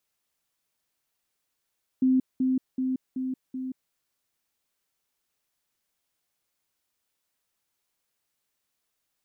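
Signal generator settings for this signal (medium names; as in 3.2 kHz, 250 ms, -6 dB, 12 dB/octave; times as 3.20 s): level ladder 259 Hz -18 dBFS, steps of -3 dB, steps 5, 0.18 s 0.20 s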